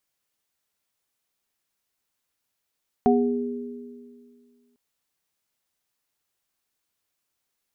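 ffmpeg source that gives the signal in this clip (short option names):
-f lavfi -i "aevalsrc='0.141*pow(10,-3*t/2.13)*sin(2*PI*243*t)+0.126*pow(10,-3*t/1.95)*sin(2*PI*409*t)+0.133*pow(10,-3*t/0.42)*sin(2*PI*731*t)':d=1.7:s=44100"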